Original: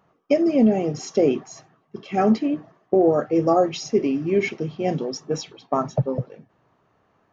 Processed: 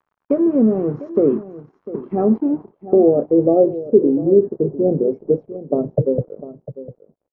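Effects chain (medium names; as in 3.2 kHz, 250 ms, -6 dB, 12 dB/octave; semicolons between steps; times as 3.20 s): resonant low shelf 620 Hz +11.5 dB, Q 1.5; in parallel at +3 dB: compression, threshold -16 dBFS, peak gain reduction 15 dB; on the sum: crackle 130 per s -27 dBFS; crossover distortion -30.5 dBFS; on a send: delay 700 ms -15 dB; on the sum: low-pass sweep 1.2 kHz -> 550 Hz, 1.79–3.88 s; 4.17–5.02 s: brick-wall FIR low-pass 2 kHz; trim -13 dB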